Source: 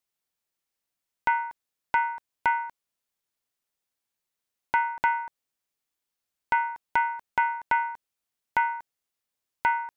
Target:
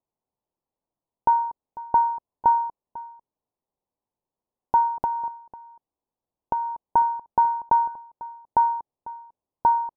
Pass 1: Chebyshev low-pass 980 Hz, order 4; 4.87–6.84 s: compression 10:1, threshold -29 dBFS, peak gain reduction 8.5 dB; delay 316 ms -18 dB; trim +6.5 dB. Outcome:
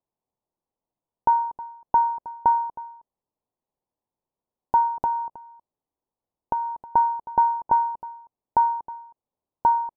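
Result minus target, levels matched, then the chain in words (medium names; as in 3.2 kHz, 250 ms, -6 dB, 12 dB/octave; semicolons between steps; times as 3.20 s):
echo 181 ms early
Chebyshev low-pass 980 Hz, order 4; 4.87–6.84 s: compression 10:1, threshold -29 dBFS, peak gain reduction 8.5 dB; delay 497 ms -18 dB; trim +6.5 dB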